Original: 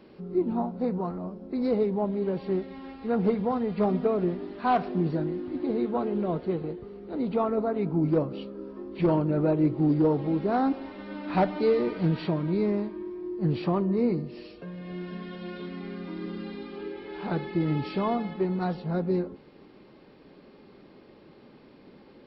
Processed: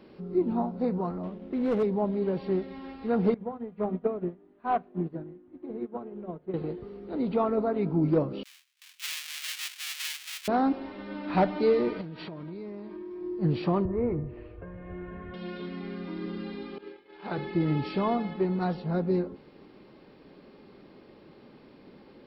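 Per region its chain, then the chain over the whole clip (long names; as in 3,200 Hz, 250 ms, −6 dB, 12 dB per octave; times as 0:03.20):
0:01.23–0:01.83: variable-slope delta modulation 32 kbit/s + low-pass filter 3,100 Hz 24 dB per octave + hard clipping −21.5 dBFS
0:03.34–0:06.54: high-frequency loss of the air 460 metres + mains-hum notches 50/100/150/200/250 Hz + expander for the loud parts 2.5 to 1, over −35 dBFS
0:08.43–0:10.48: each half-wave held at its own peak + noise gate with hold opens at −29 dBFS, closes at −34 dBFS + four-pole ladder high-pass 2,000 Hz, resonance 25%
0:12.01–0:13.21: low-shelf EQ 160 Hz −6 dB + downward compressor 8 to 1, threshold −36 dBFS
0:13.85–0:15.34: low-pass filter 2,000 Hz 24 dB per octave + low shelf with overshoot 130 Hz +13 dB, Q 3
0:16.78–0:17.38: downward expander −32 dBFS + low-shelf EQ 280 Hz −10 dB
whole clip: no processing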